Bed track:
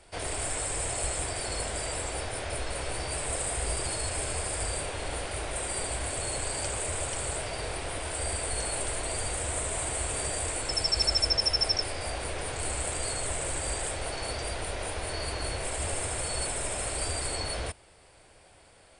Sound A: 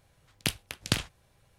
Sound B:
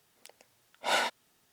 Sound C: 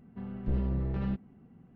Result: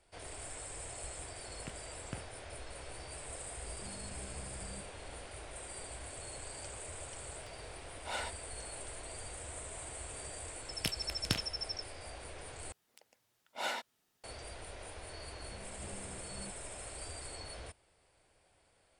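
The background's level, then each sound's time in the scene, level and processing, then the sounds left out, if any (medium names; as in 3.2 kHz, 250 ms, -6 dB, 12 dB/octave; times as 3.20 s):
bed track -13.5 dB
1.21 s: add A -14.5 dB + boxcar filter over 11 samples
3.65 s: add C -13 dB + peak limiter -31.5 dBFS
7.21 s: add B -11.5 dB + peaking EQ 13 kHz -7.5 dB 0.64 oct
10.39 s: add A -7 dB
12.72 s: replace with B -9 dB
15.35 s: add C -15.5 dB + high-pass 190 Hz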